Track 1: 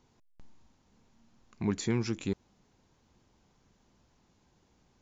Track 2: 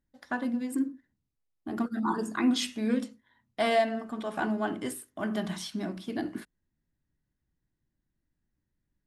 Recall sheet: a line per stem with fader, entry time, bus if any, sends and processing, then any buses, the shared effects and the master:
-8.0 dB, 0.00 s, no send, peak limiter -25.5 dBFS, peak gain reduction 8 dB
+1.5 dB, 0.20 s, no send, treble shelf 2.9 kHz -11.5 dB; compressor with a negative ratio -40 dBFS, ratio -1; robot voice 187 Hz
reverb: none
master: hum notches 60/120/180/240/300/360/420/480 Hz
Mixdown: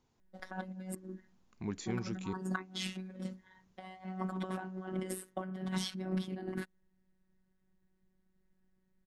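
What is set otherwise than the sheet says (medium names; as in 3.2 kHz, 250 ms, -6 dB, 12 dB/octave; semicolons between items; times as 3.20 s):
stem 1: missing peak limiter -25.5 dBFS, peak gain reduction 8 dB; master: missing hum notches 60/120/180/240/300/360/420/480 Hz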